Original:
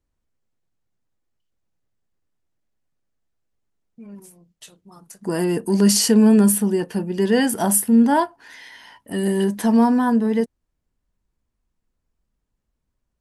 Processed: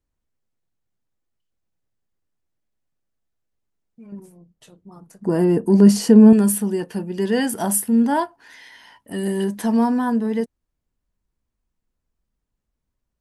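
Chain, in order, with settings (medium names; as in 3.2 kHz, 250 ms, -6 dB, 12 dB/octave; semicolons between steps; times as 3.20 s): 4.12–6.33 s: tilt shelf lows +7.5 dB, about 1.4 kHz; trim -2.5 dB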